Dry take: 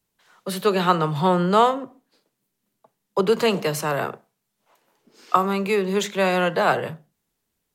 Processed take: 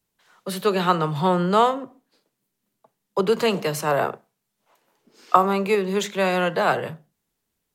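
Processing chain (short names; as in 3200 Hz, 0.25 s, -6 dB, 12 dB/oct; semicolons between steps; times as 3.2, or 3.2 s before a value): 3.86–5.75 dynamic EQ 680 Hz, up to +6 dB, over -31 dBFS, Q 0.84; gain -1 dB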